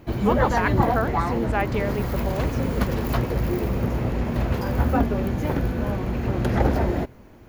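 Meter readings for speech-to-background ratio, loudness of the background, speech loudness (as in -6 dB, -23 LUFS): -4.0 dB, -24.5 LUFS, -28.5 LUFS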